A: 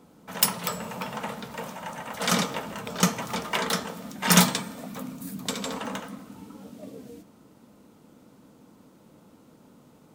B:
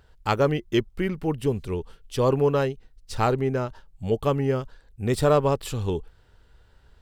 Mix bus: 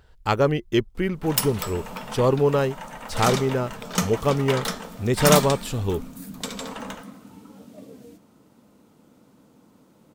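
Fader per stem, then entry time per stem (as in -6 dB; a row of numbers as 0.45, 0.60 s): -1.5, +1.5 dB; 0.95, 0.00 s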